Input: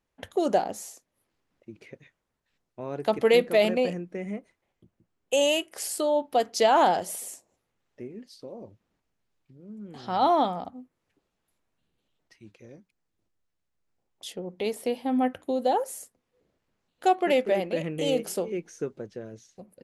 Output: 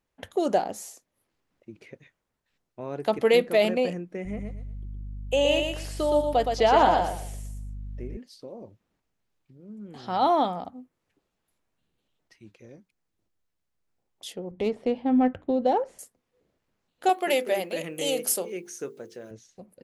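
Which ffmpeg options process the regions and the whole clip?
-filter_complex "[0:a]asettb=1/sr,asplit=3[s0][s1][s2];[s0]atrim=end=4.254[s3];[s1]atrim=start=4.25:end=8.17,asetpts=PTS-STARTPTS,afade=t=in:d=0.004:c=qsin,afade=t=out:st=3.916:d=0.004:c=qsin,aeval=exprs='val(0)+0.0126*(sin(2*PI*50*n/s)+sin(2*PI*2*50*n/s)/2+sin(2*PI*3*50*n/s)/3+sin(2*PI*4*50*n/s)/4+sin(2*PI*5*50*n/s)/5)':c=same,aecho=1:1:118|236|354:0.562|0.146|0.038,atrim=end_sample=172872,acrossover=split=4600[s4][s5];[s5]acompressor=threshold=0.00398:ratio=4:attack=1:release=60[s6];[s4][s6]amix=inputs=2:normalize=0[s7];[s2]atrim=start=8.166[s8];[s3][s7]acrossfade=d=0.004:c1=hsin:c2=qsin[s9];[s9][s8]acrossfade=d=0.004:c1=qsin:c2=hsin,asettb=1/sr,asplit=3[s10][s11][s12];[s10]atrim=end=14.514[s13];[s11]atrim=start=14.51:end=15.99,asetpts=PTS-STARTPTS,afade=t=in:d=0.004:c=qsin,afade=t=out:st=1.476:d=0.004:c=qsin,aemphasis=mode=reproduction:type=bsi,adynamicsmooth=sensitivity=7.5:basefreq=4000[s14];[s12]atrim=start=15.986[s15];[s13][s14]acrossfade=d=0.004:c1=hsin:c2=qsin[s16];[s16][s15]acrossfade=d=0.004:c1=qsin:c2=hsin,asettb=1/sr,asplit=3[s17][s18][s19];[s17]atrim=end=17.094[s20];[s18]atrim=start=17.09:end=19.31,asetpts=PTS-STARTPTS,afade=t=in:d=0.004:c=qsin,afade=t=out:st=2.216:d=0.004:c=qsin,aemphasis=mode=production:type=bsi,bandreject=f=50:t=h:w=6,bandreject=f=100:t=h:w=6,bandreject=f=150:t=h:w=6,bandreject=f=200:t=h:w=6,bandreject=f=250:t=h:w=6,bandreject=f=300:t=h:w=6,bandreject=f=350:t=h:w=6,bandreject=f=400:t=h:w=6,bandreject=f=450:t=h:w=6,bandreject=f=500:t=h:w=6[s21];[s19]atrim=start=19.306[s22];[s20][s21]acrossfade=d=0.004:c1=hsin:c2=qsin[s23];[s23][s22]acrossfade=d=0.004:c1=qsin:c2=hsin"

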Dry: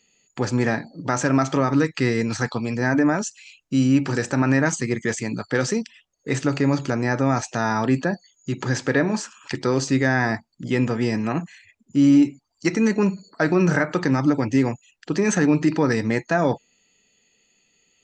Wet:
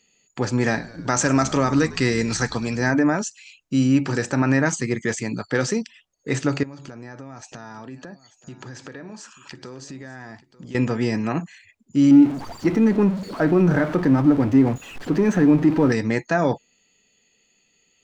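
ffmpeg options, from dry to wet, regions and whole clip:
-filter_complex "[0:a]asettb=1/sr,asplit=3[s0][s1][s2];[s0]atrim=end=0.634[s3];[s1]atrim=start=0.63:end=2.91,asetpts=PTS-STARTPTS,afade=t=in:d=0.004:c=qsin,afade=t=out:st=2.276:d=0.004:c=qsin,highshelf=f=4100:g=9.5,asplit=7[s4][s5][s6][s7][s8][s9][s10];[s5]adelay=103,afreqshift=-58,volume=0.112[s11];[s6]adelay=206,afreqshift=-116,volume=0.0716[s12];[s7]adelay=309,afreqshift=-174,volume=0.0457[s13];[s8]adelay=412,afreqshift=-232,volume=0.0295[s14];[s9]adelay=515,afreqshift=-290,volume=0.0188[s15];[s10]adelay=618,afreqshift=-348,volume=0.012[s16];[s4][s11][s12][s13][s14][s15][s16]amix=inputs=7:normalize=0,atrim=end_sample=100548[s17];[s2]atrim=start=2.906[s18];[s3][s17]acrossfade=d=0.004:c1=hsin:c2=qsin[s19];[s19][s18]acrossfade=d=0.004:c1=qsin:c2=hsin,asettb=1/sr,asplit=3[s20][s21][s22];[s20]atrim=end=6.634[s23];[s21]atrim=start=6.63:end=10.75,asetpts=PTS-STARTPTS,afade=t=in:d=0.004:c=qsin,afade=t=out:st=4.116:d=0.004:c=qsin,bandreject=f=2100:w=24,acompressor=threshold=0.0158:ratio=5:attack=3.2:release=140:knee=1:detection=peak,aecho=1:1:891:0.133,atrim=end_sample=181692[s24];[s22]atrim=start=10.746[s25];[s23][s24]acrossfade=d=0.004:c1=hsin:c2=qsin[s26];[s26][s25]acrossfade=d=0.004:c1=qsin:c2=hsin,asettb=1/sr,asplit=3[s27][s28][s29];[s27]atrim=end=12.114[s30];[s28]atrim=start=12.11:end=15.92,asetpts=PTS-STARTPTS,afade=t=in:d=0.004:c=qsin,afade=t=out:st=3.806:d=0.004:c=qsin,aeval=exprs='val(0)+0.5*0.0631*sgn(val(0))':c=same,lowpass=f=1000:p=1,equalizer=f=270:t=o:w=0.41:g=3[s31];[s29]atrim=start=15.916[s32];[s30][s31]acrossfade=d=0.004:c1=hsin:c2=qsin[s33];[s33][s32]acrossfade=d=0.004:c1=qsin:c2=hsin"

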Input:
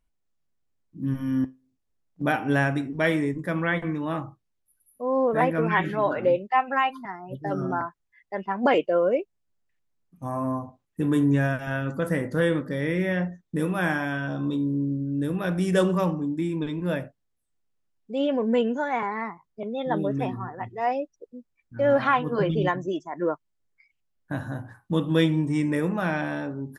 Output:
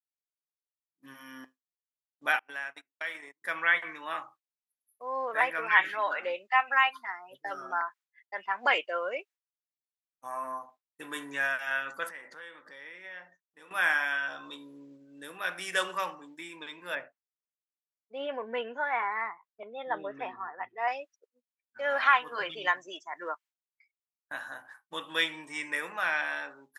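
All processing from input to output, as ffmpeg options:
-filter_complex "[0:a]asettb=1/sr,asplit=3[s0][s1][s2];[s0]atrim=end=2.394[s3];[s1]atrim=start=2.39:end=3.42,asetpts=PTS-STARTPTS,afade=t=in:d=0.004:c=qsin,afade=t=out:st=1.026:d=0.004:c=qsin,agate=range=0.0251:threshold=0.0631:ratio=16:release=100:detection=peak,acompressor=threshold=0.0355:ratio=8:attack=3.2:release=140:knee=1:detection=peak[s4];[s2]atrim=start=3.416[s5];[s3][s4]acrossfade=d=0.004:c1=hsin:c2=qsin[s6];[s6][s5]acrossfade=d=0.004:c1=qsin:c2=hsin,asettb=1/sr,asplit=3[s7][s8][s9];[s7]atrim=end=12.094[s10];[s8]atrim=start=12.09:end=13.71,asetpts=PTS-STARTPTS,afade=t=in:d=0.004:c=qsin,afade=t=out:st=1.616:d=0.004:c=qsin,lowpass=6600,equalizer=f=900:t=o:w=0.36:g=3.5,acompressor=threshold=0.0224:ratio=16:attack=3.2:release=140:knee=1:detection=peak[s11];[s9]atrim=start=13.706[s12];[s10][s11]acrossfade=d=0.004:c1=hsin:c2=qsin[s13];[s13][s12]acrossfade=d=0.004:c1=qsin:c2=hsin,asettb=1/sr,asplit=3[s14][s15][s16];[s14]atrim=end=16.954[s17];[s15]atrim=start=16.95:end=20.88,asetpts=PTS-STARTPTS,afade=t=in:d=0.004:c=qsin,afade=t=out:st=3.926:d=0.004:c=qsin,lowpass=2900,tiltshelf=f=1200:g=4.5[s18];[s16]atrim=start=20.876[s19];[s17][s18]acrossfade=d=0.004:c1=hsin:c2=qsin[s20];[s20][s19]acrossfade=d=0.004:c1=qsin:c2=hsin,highpass=1100,agate=range=0.0224:threshold=0.00251:ratio=3:detection=peak,adynamicequalizer=threshold=0.00631:dfrequency=2100:dqfactor=0.9:tfrequency=2100:tqfactor=0.9:attack=5:release=100:ratio=0.375:range=2.5:mode=boostabove:tftype=bell"

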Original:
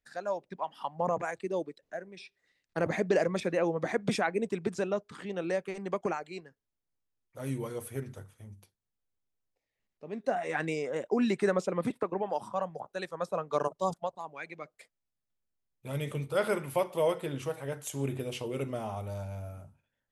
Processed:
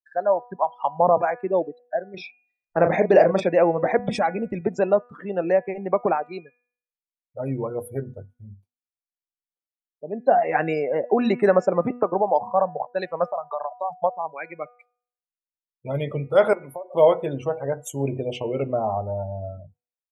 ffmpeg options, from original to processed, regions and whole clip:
-filter_complex "[0:a]asettb=1/sr,asplit=3[s0][s1][s2];[s0]atrim=end=2.144[s3];[s1]atrim=start=2.14:end=3.49,asetpts=PTS-STARTPTS,afade=t=in:d=0.004:c=qsin,afade=t=out:st=1.346:d=0.004:c=qsin,agate=range=0.0224:threshold=0.00158:ratio=3:release=100:detection=peak,acompressor=mode=upward:threshold=0.02:ratio=2.5:attack=3.2:release=140:knee=2.83:detection=peak,asplit=2[s4][s5];[s5]adelay=36,volume=0.447[s6];[s4][s6]amix=inputs=2:normalize=0,atrim=end_sample=59535[s7];[s2]atrim=start=3.486[s8];[s3][s7]acrossfade=d=0.004:c1=hsin:c2=qsin[s9];[s9][s8]acrossfade=d=0.004:c1=qsin:c2=hsin,asettb=1/sr,asplit=3[s10][s11][s12];[s10]atrim=end=3.994[s13];[s11]atrim=start=3.99:end=4.61,asetpts=PTS-STARTPTS,afade=t=in:d=0.004:c=qsin,afade=t=out:st=0.616:d=0.004:c=qsin,lowshelf=f=180:t=q:w=1.5:g=10.5,aecho=1:1:3.6:0.56,atrim=end_sample=27342,acompressor=threshold=0.0282:ratio=2:attack=3.2:release=140:knee=1:detection=peak[s14];[s12]atrim=start=4.606[s15];[s13][s14]acrossfade=d=0.004:c1=hsin:c2=qsin[s16];[s16][s15]acrossfade=d=0.004:c1=qsin:c2=hsin,asettb=1/sr,asplit=3[s17][s18][s19];[s17]atrim=end=13.284[s20];[s18]atrim=start=13.28:end=13.97,asetpts=PTS-STARTPTS,afade=t=in:d=0.004:c=qsin,afade=t=out:st=0.686:d=0.004:c=qsin,lowshelf=f=560:t=q:w=3:g=-7,bandreject=f=190:w=6.3,acompressor=threshold=0.0141:ratio=4:attack=3.2:release=140:knee=1:detection=peak[s21];[s19]atrim=start=13.966[s22];[s20][s21]acrossfade=d=0.004:c1=hsin:c2=qsin[s23];[s23][s22]acrossfade=d=0.004:c1=qsin:c2=hsin,asettb=1/sr,asplit=3[s24][s25][s26];[s24]atrim=end=16.534[s27];[s25]atrim=start=16.53:end=16.94,asetpts=PTS-STARTPTS,afade=t=in:d=0.004:c=qsin,afade=t=out:st=0.406:d=0.004:c=qsin,highpass=180,acompressor=threshold=0.01:ratio=16:attack=3.2:release=140:knee=1:detection=peak[s28];[s26]atrim=start=16.936[s29];[s27][s28]acrossfade=d=0.004:c1=hsin:c2=qsin[s30];[s30][s29]acrossfade=d=0.004:c1=qsin:c2=hsin,afftdn=nr=36:nf=-42,equalizer=f=700:t=o:w=1:g=9,bandreject=f=244.2:t=h:w=4,bandreject=f=488.4:t=h:w=4,bandreject=f=732.6:t=h:w=4,bandreject=f=976.8:t=h:w=4,bandreject=f=1221:t=h:w=4,bandreject=f=1465.2:t=h:w=4,bandreject=f=1709.4:t=h:w=4,bandreject=f=1953.6:t=h:w=4,bandreject=f=2197.8:t=h:w=4,bandreject=f=2442:t=h:w=4,bandreject=f=2686.2:t=h:w=4,bandreject=f=2930.4:t=h:w=4,volume=2"

